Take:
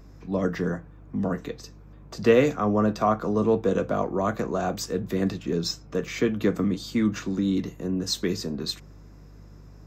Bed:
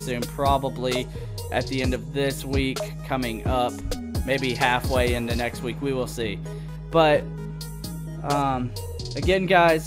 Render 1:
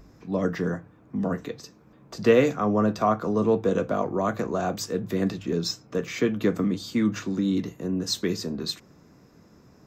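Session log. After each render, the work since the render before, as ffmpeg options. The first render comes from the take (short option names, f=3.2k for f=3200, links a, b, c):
-af "bandreject=f=50:t=h:w=4,bandreject=f=100:t=h:w=4,bandreject=f=150:t=h:w=4"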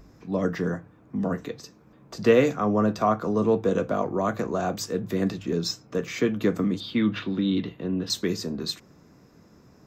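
-filter_complex "[0:a]asettb=1/sr,asplit=3[a][b][c];[a]atrim=end=6.804[d];[b]atrim=start=6.8:end=8.1,asetpts=PTS-STARTPTS,afade=t=in:d=0.004:c=qsin,afade=t=out:st=1.296:d=0.004:c=qsin,highshelf=f=4.9k:t=q:w=3:g=-12.5[e];[c]atrim=start=8.096[f];[d][e]acrossfade=d=0.004:c1=hsin:c2=qsin[g];[g][f]acrossfade=d=0.004:c1=qsin:c2=hsin"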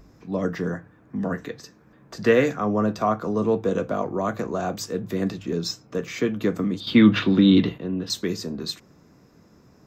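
-filter_complex "[0:a]asettb=1/sr,asplit=3[a][b][c];[a]atrim=end=0.754[d];[b]atrim=start=0.75:end=2.58,asetpts=PTS-STARTPTS,afade=t=in:d=0.004:c=qsin,afade=t=out:st=1.826:d=0.004:c=qsin,equalizer=f=1.7k:t=o:w=0.39:g=8[e];[c]atrim=start=2.576[f];[d][e]acrossfade=d=0.004:c1=hsin:c2=qsin[g];[g][f]acrossfade=d=0.004:c1=qsin:c2=hsin,asplit=3[h][i][j];[h]atrim=end=6.872[k];[i]atrim=start=6.868:end=7.782,asetpts=PTS-STARTPTS,volume=9dB[l];[j]atrim=start=7.778[m];[k][l]acrossfade=d=0.004:c1=hsin:c2=hsin[n];[n][m]acrossfade=d=0.004:c1=hsin:c2=hsin"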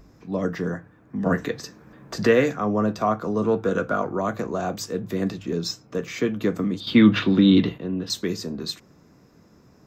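-filter_complex "[0:a]asettb=1/sr,asplit=3[a][b][c];[a]atrim=end=1.264[d];[b]atrim=start=1.26:end=2.27,asetpts=PTS-STARTPTS,afade=t=in:d=0.004:c=qsin,afade=t=out:st=1.006:d=0.004:c=qsin,acontrast=60[e];[c]atrim=start=2.266[f];[d][e]acrossfade=d=0.004:c1=hsin:c2=qsin[g];[g][f]acrossfade=d=0.004:c1=qsin:c2=hsin,asettb=1/sr,asplit=3[h][i][j];[h]atrim=end=3.434[k];[i]atrim=start=3.43:end=4.21,asetpts=PTS-STARTPTS,afade=t=in:d=0.004:c=qsin,afade=t=out:st=0.776:d=0.004:c=qsin,equalizer=f=1.4k:t=o:w=0.33:g=12.5[l];[j]atrim=start=4.206[m];[k][l]acrossfade=d=0.004:c1=hsin:c2=qsin[n];[n][m]acrossfade=d=0.004:c1=qsin:c2=hsin"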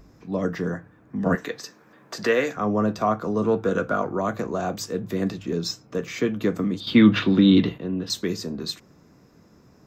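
-filter_complex "[0:a]asettb=1/sr,asplit=3[a][b][c];[a]atrim=end=1.354[d];[b]atrim=start=1.35:end=2.57,asetpts=PTS-STARTPTS,afade=t=in:d=0.004:c=qsin,afade=t=out:st=1.216:d=0.004:c=qsin,highpass=f=520:p=1[e];[c]atrim=start=2.566[f];[d][e]acrossfade=d=0.004:c1=hsin:c2=qsin[g];[g][f]acrossfade=d=0.004:c1=qsin:c2=hsin"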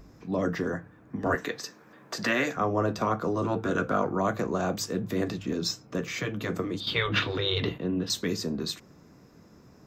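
-af "afftfilt=real='re*lt(hypot(re,im),0.447)':imag='im*lt(hypot(re,im),0.447)':win_size=1024:overlap=0.75"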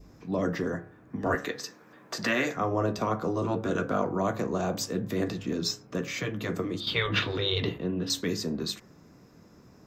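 -af "bandreject=f=69.49:t=h:w=4,bandreject=f=138.98:t=h:w=4,bandreject=f=208.47:t=h:w=4,bandreject=f=277.96:t=h:w=4,bandreject=f=347.45:t=h:w=4,bandreject=f=416.94:t=h:w=4,bandreject=f=486.43:t=h:w=4,bandreject=f=555.92:t=h:w=4,bandreject=f=625.41:t=h:w=4,bandreject=f=694.9:t=h:w=4,bandreject=f=764.39:t=h:w=4,bandreject=f=833.88:t=h:w=4,bandreject=f=903.37:t=h:w=4,bandreject=f=972.86:t=h:w=4,bandreject=f=1.04235k:t=h:w=4,bandreject=f=1.11184k:t=h:w=4,bandreject=f=1.18133k:t=h:w=4,bandreject=f=1.25082k:t=h:w=4,bandreject=f=1.32031k:t=h:w=4,bandreject=f=1.3898k:t=h:w=4,bandreject=f=1.45929k:t=h:w=4,bandreject=f=1.52878k:t=h:w=4,bandreject=f=1.59827k:t=h:w=4,bandreject=f=1.66776k:t=h:w=4,bandreject=f=1.73725k:t=h:w=4,bandreject=f=1.80674k:t=h:w=4,bandreject=f=1.87623k:t=h:w=4,bandreject=f=1.94572k:t=h:w=4,bandreject=f=2.01521k:t=h:w=4,bandreject=f=2.0847k:t=h:w=4,adynamicequalizer=threshold=0.00562:dfrequency=1400:dqfactor=1.8:tfrequency=1400:tqfactor=1.8:attack=5:release=100:ratio=0.375:range=2:mode=cutabove:tftype=bell"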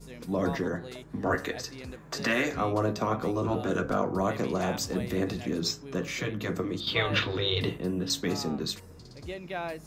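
-filter_complex "[1:a]volume=-18dB[a];[0:a][a]amix=inputs=2:normalize=0"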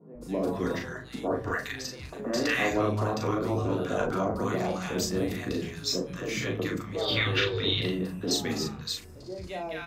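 -filter_complex "[0:a]asplit=2[a][b];[b]adelay=38,volume=-4dB[c];[a][c]amix=inputs=2:normalize=0,acrossover=split=170|1000[d][e][f];[d]adelay=150[g];[f]adelay=210[h];[g][e][h]amix=inputs=3:normalize=0"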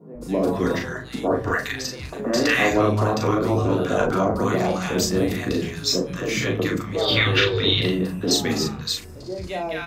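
-af "volume=7.5dB"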